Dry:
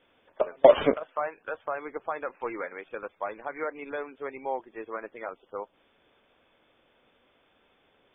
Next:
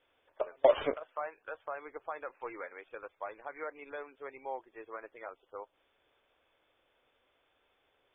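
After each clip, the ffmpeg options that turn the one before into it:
-af "equalizer=f=200:w=1.5:g=-12,volume=-7dB"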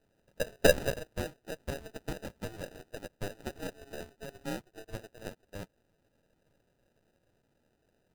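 -af "aeval=exprs='if(lt(val(0),0),0.447*val(0),val(0))':c=same,equalizer=f=250:t=o:w=0.67:g=-10,equalizer=f=1k:t=o:w=0.67:g=5,equalizer=f=2.5k:t=o:w=0.67:g=-6,acrusher=samples=40:mix=1:aa=0.000001,volume=3.5dB"

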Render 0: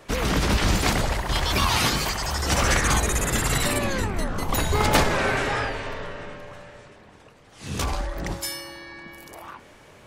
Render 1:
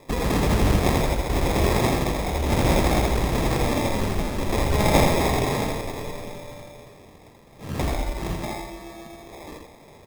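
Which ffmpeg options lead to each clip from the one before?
-af "acrusher=samples=30:mix=1:aa=0.000001,aecho=1:1:82:0.631"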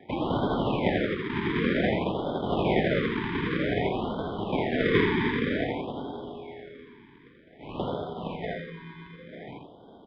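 -af "acrusher=bits=5:mode=log:mix=0:aa=0.000001,highpass=f=320:t=q:w=0.5412,highpass=f=320:t=q:w=1.307,lowpass=f=3.4k:t=q:w=0.5176,lowpass=f=3.4k:t=q:w=0.7071,lowpass=f=3.4k:t=q:w=1.932,afreqshift=-170,afftfilt=real='re*(1-between(b*sr/1024,600*pow(2200/600,0.5+0.5*sin(2*PI*0.53*pts/sr))/1.41,600*pow(2200/600,0.5+0.5*sin(2*PI*0.53*pts/sr))*1.41))':imag='im*(1-between(b*sr/1024,600*pow(2200/600,0.5+0.5*sin(2*PI*0.53*pts/sr))/1.41,600*pow(2200/600,0.5+0.5*sin(2*PI*0.53*pts/sr))*1.41))':win_size=1024:overlap=0.75"

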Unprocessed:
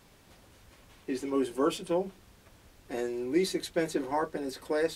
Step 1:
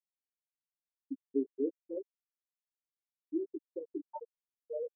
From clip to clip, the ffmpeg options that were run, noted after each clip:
-af "afftfilt=real='re*gte(hypot(re,im),0.316)':imag='im*gte(hypot(re,im),0.316)':win_size=1024:overlap=0.75,aecho=1:1:7:0.63,volume=-5.5dB"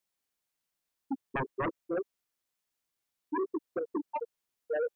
-af "aeval=exprs='0.0891*sin(PI/2*4.47*val(0)/0.0891)':c=same,volume=-6.5dB"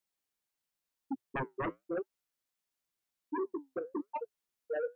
-af "flanger=delay=3.5:depth=6.1:regen=-72:speed=0.93:shape=sinusoidal,volume=1dB"

